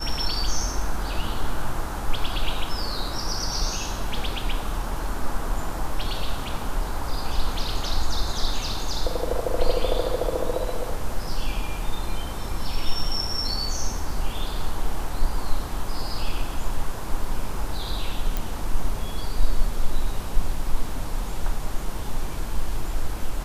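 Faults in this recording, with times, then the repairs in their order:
18.37 pop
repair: de-click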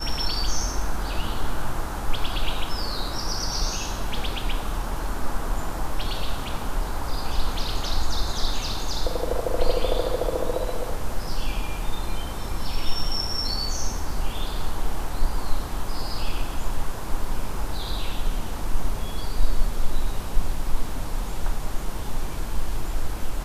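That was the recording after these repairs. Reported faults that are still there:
none

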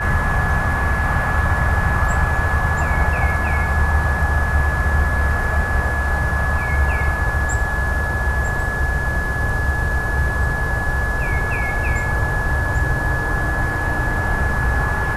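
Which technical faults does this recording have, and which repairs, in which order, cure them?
tone 1700 Hz -23 dBFS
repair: notch 1700 Hz, Q 30

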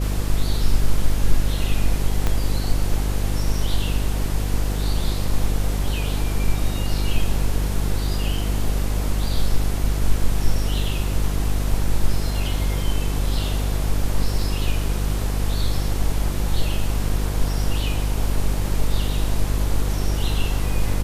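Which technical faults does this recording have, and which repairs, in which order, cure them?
buzz 50 Hz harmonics 10 -23 dBFS
2.27 pop -8 dBFS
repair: de-click; de-hum 50 Hz, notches 10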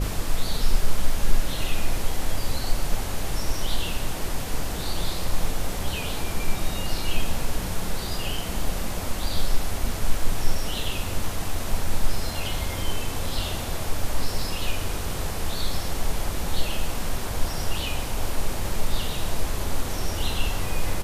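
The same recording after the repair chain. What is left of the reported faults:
2.27 pop

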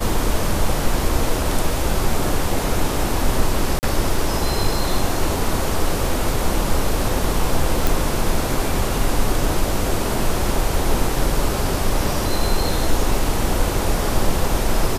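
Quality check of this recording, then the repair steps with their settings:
3.79–3.83 gap 39 ms
7.87 pop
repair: de-click; interpolate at 3.79, 39 ms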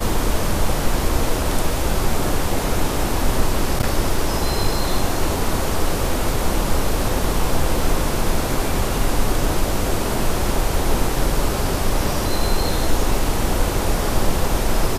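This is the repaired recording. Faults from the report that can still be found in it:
none

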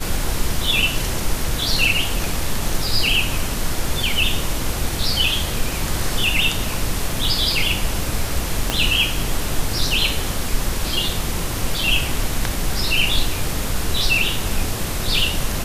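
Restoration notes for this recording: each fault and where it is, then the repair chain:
8.7 pop -3 dBFS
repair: de-click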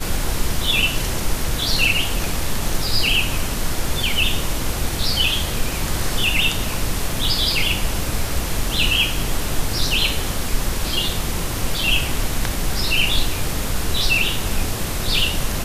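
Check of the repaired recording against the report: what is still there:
8.7 pop

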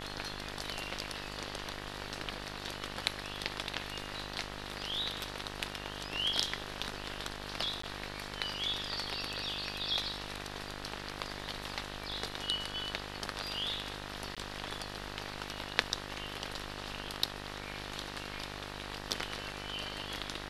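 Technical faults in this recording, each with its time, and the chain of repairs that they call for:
buzz 50 Hz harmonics 39 -45 dBFS
7.82–7.83 gap 14 ms
14.35–14.37 gap 16 ms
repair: de-hum 50 Hz, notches 39; interpolate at 7.82, 14 ms; interpolate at 14.35, 16 ms

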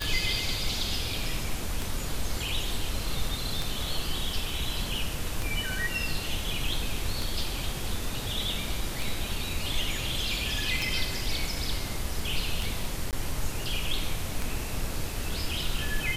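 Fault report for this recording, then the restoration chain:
tick 33 1/3 rpm
13.11–13.13 gap 18 ms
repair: de-click; interpolate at 13.11, 18 ms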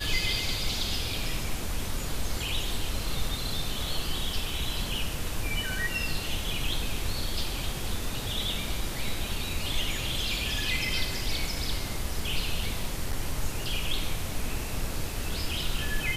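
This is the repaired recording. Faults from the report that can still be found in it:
none

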